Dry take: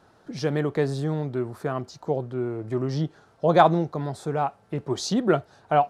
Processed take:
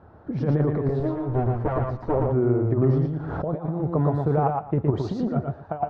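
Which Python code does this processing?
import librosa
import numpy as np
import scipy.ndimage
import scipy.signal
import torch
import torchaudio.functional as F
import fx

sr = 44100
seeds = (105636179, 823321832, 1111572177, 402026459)

y = fx.lower_of_two(x, sr, delay_ms=9.6, at=(0.88, 2.22))
y = scipy.signal.sosfilt(scipy.signal.butter(2, 1200.0, 'lowpass', fs=sr, output='sos'), y)
y = fx.peak_eq(y, sr, hz=71.0, db=13.5, octaves=0.99)
y = fx.over_compress(y, sr, threshold_db=-25.0, ratio=-0.5)
y = fx.echo_feedback(y, sr, ms=116, feedback_pct=19, wet_db=-3.0)
y = fx.pre_swell(y, sr, db_per_s=23.0, at=(2.82, 3.59))
y = y * 10.0 ** (2.5 / 20.0)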